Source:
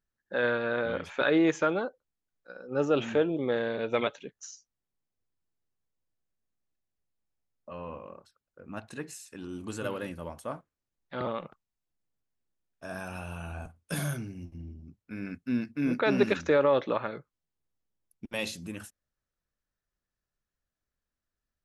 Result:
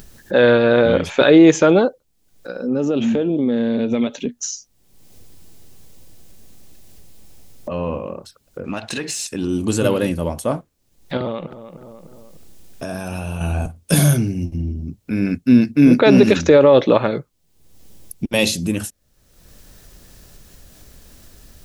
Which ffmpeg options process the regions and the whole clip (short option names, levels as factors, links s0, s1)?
-filter_complex "[0:a]asettb=1/sr,asplit=3[s0][s1][s2];[s0]atrim=end=2.624[s3];[s1]atrim=start=2.62:end=4.51,asetpts=PTS-STARTPTS,afade=t=in:d=0.004:c=qsin,afade=t=out:st=1.886:d=0.004:c=qsin,equalizer=f=240:w=4.6:g=14.5,acompressor=threshold=0.0178:ratio=4:attack=3.2:release=140:knee=1:detection=peak[s4];[s2]atrim=start=4.506[s5];[s3][s4]acrossfade=d=0.004:c1=hsin:c2=qsin[s6];[s6][s5]acrossfade=d=0.004:c1=qsin:c2=hsin,asettb=1/sr,asplit=3[s7][s8][s9];[s7]atrim=end=8.644[s10];[s8]atrim=start=8.64:end=9.27,asetpts=PTS-STARTPTS,afade=t=in:d=0.004:c=qsin,afade=t=out:st=0.626:d=0.004:c=qsin,equalizer=f=4400:w=0.37:g=9,acompressor=threshold=0.0158:ratio=10:attack=3.2:release=140:knee=1:detection=peak,asplit=2[s11][s12];[s12]highpass=f=720:p=1,volume=3.16,asoftclip=type=tanh:threshold=0.0447[s13];[s11][s13]amix=inputs=2:normalize=0,lowpass=f=2700:p=1,volume=0.501[s14];[s9]atrim=start=9.266[s15];[s10][s14]acrossfade=d=0.004:c1=hsin:c2=qsin[s16];[s16][s15]acrossfade=d=0.004:c1=qsin:c2=hsin,asettb=1/sr,asplit=3[s17][s18][s19];[s17]atrim=end=11.174[s20];[s18]atrim=start=11.17:end=13.41,asetpts=PTS-STARTPTS,afade=t=in:d=0.004:c=qsin,afade=t=out:st=2.236:d=0.004:c=qsin,acompressor=threshold=0.00708:ratio=2:attack=3.2:release=140:knee=1:detection=peak,asplit=2[s21][s22];[s22]adelay=302,lowpass=f=1900:p=1,volume=0.15,asplit=2[s23][s24];[s24]adelay=302,lowpass=f=1900:p=1,volume=0.28,asplit=2[s25][s26];[s26]adelay=302,lowpass=f=1900:p=1,volume=0.28[s27];[s21][s23][s25][s27]amix=inputs=4:normalize=0,atrim=end_sample=98784[s28];[s19]atrim=start=13.406[s29];[s20][s28]acrossfade=d=0.004:c1=hsin:c2=qsin[s30];[s30][s29]acrossfade=d=0.004:c1=qsin:c2=hsin,acompressor=mode=upward:threshold=0.00891:ratio=2.5,equalizer=f=1400:t=o:w=1.7:g=-9.5,alimiter=level_in=10:limit=0.891:release=50:level=0:latency=1,volume=0.891"